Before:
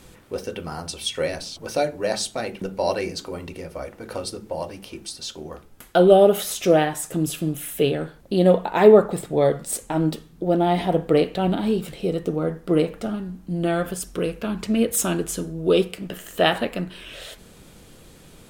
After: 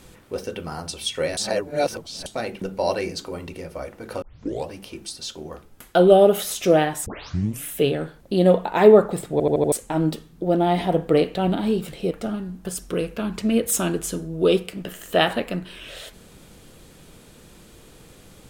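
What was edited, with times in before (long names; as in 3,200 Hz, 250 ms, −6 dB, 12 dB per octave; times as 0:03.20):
0:01.37–0:02.26: reverse
0:04.22: tape start 0.46 s
0:07.06: tape start 0.58 s
0:09.32: stutter in place 0.08 s, 5 plays
0:12.11–0:12.91: remove
0:13.45–0:13.90: remove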